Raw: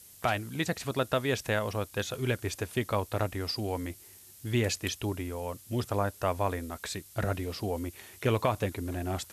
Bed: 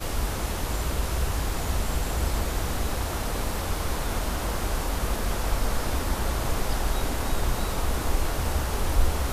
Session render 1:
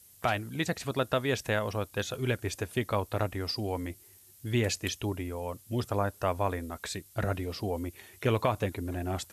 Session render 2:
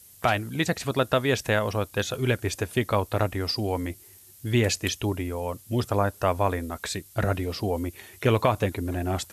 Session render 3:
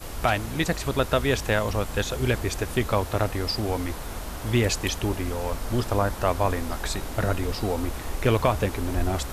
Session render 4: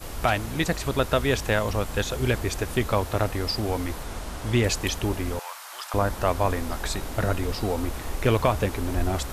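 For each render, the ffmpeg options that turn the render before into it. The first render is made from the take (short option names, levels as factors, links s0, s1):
-af "afftdn=nr=6:nf=-53"
-af "volume=1.88"
-filter_complex "[1:a]volume=0.473[s0];[0:a][s0]amix=inputs=2:normalize=0"
-filter_complex "[0:a]asettb=1/sr,asplit=3[s0][s1][s2];[s0]atrim=end=4.034[s3];[s1]atrim=start=4.03:end=4.65,asetpts=PTS-STARTPTS,afade=t=in:d=0.004:c=qsin,afade=t=out:st=0.616:d=0.004:c=qsin,lowpass=11000[s4];[s2]atrim=start=4.646[s5];[s3][s4]acrossfade=d=0.004:c1=hsin:c2=qsin[s6];[s6][s5]acrossfade=d=0.004:c1=qsin:c2=hsin,asettb=1/sr,asplit=3[s7][s8][s9];[s7]atrim=end=5.394[s10];[s8]atrim=start=5.39:end=5.94,asetpts=PTS-STARTPTS,afade=t=in:d=0.004:c=qsin,afade=t=out:st=0.546:d=0.004:c=qsin,highpass=f=890:w=0.5412,highpass=f=890:w=1.3066[s11];[s9]atrim=start=5.936[s12];[s10][s11]acrossfade=d=0.004:c1=hsin:c2=qsin[s13];[s13][s12]acrossfade=d=0.004:c1=qsin:c2=hsin"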